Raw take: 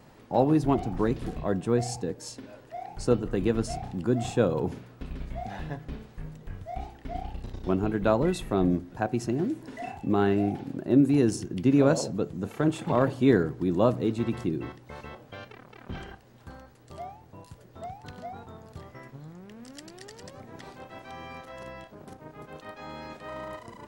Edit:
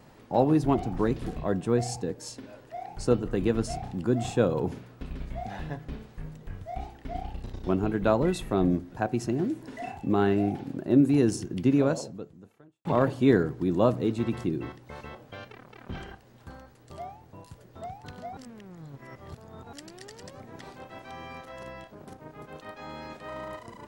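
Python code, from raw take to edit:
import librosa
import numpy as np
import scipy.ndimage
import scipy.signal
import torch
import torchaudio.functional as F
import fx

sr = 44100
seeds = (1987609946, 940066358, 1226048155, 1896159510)

y = fx.edit(x, sr, fx.fade_out_span(start_s=11.65, length_s=1.2, curve='qua'),
    fx.reverse_span(start_s=18.37, length_s=1.36), tone=tone)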